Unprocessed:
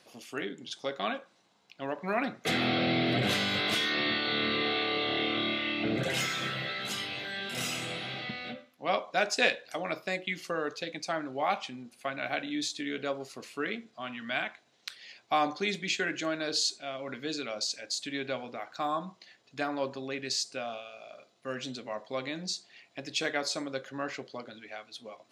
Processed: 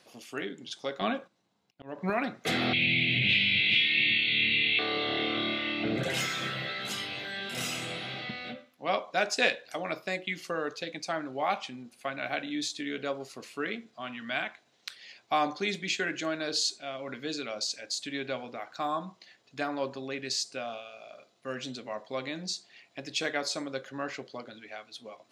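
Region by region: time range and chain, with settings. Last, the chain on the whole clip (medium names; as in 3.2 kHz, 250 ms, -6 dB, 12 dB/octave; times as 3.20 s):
1.01–2.10 s: gate -59 dBFS, range -10 dB + bass shelf 340 Hz +10.5 dB + slow attack 273 ms
2.73–4.79 s: block-companded coder 5-bit + FFT filter 160 Hz 0 dB, 1.3 kHz -28 dB, 2.4 kHz +14 dB, 4 kHz 0 dB, 5.8 kHz -20 dB, 12 kHz -29 dB
whole clip: none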